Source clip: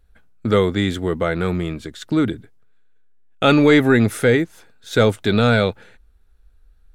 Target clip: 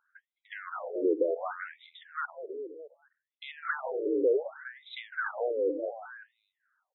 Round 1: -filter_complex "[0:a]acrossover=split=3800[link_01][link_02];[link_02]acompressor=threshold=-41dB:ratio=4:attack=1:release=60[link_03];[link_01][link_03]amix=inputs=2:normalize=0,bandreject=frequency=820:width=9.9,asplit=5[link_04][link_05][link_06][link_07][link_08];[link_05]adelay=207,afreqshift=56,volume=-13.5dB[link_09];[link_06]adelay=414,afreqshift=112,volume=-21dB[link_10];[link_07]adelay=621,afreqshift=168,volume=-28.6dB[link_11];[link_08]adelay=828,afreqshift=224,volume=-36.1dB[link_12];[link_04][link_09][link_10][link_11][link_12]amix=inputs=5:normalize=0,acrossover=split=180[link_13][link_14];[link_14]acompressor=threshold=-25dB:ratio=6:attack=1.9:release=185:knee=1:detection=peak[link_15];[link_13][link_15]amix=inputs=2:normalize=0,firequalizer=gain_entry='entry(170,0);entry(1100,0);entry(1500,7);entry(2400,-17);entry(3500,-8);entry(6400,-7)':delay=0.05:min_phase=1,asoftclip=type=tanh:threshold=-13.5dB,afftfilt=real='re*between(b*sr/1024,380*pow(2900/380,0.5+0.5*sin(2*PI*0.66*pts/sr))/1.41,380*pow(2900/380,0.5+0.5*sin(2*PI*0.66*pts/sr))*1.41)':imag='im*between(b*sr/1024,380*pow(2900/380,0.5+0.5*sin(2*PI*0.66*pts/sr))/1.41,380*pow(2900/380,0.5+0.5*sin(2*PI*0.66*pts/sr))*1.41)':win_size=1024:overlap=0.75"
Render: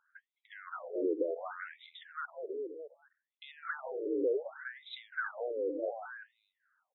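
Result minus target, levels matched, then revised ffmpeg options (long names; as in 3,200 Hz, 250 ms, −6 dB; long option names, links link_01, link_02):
downward compressor: peak gain reduction +7 dB
-filter_complex "[0:a]acrossover=split=3800[link_01][link_02];[link_02]acompressor=threshold=-41dB:ratio=4:attack=1:release=60[link_03];[link_01][link_03]amix=inputs=2:normalize=0,bandreject=frequency=820:width=9.9,asplit=5[link_04][link_05][link_06][link_07][link_08];[link_05]adelay=207,afreqshift=56,volume=-13.5dB[link_09];[link_06]adelay=414,afreqshift=112,volume=-21dB[link_10];[link_07]adelay=621,afreqshift=168,volume=-28.6dB[link_11];[link_08]adelay=828,afreqshift=224,volume=-36.1dB[link_12];[link_04][link_09][link_10][link_11][link_12]amix=inputs=5:normalize=0,acrossover=split=180[link_13][link_14];[link_14]acompressor=threshold=-16.5dB:ratio=6:attack=1.9:release=185:knee=1:detection=peak[link_15];[link_13][link_15]amix=inputs=2:normalize=0,firequalizer=gain_entry='entry(170,0);entry(1100,0);entry(1500,7);entry(2400,-17);entry(3500,-8);entry(6400,-7)':delay=0.05:min_phase=1,asoftclip=type=tanh:threshold=-13.5dB,afftfilt=real='re*between(b*sr/1024,380*pow(2900/380,0.5+0.5*sin(2*PI*0.66*pts/sr))/1.41,380*pow(2900/380,0.5+0.5*sin(2*PI*0.66*pts/sr))*1.41)':imag='im*between(b*sr/1024,380*pow(2900/380,0.5+0.5*sin(2*PI*0.66*pts/sr))/1.41,380*pow(2900/380,0.5+0.5*sin(2*PI*0.66*pts/sr))*1.41)':win_size=1024:overlap=0.75"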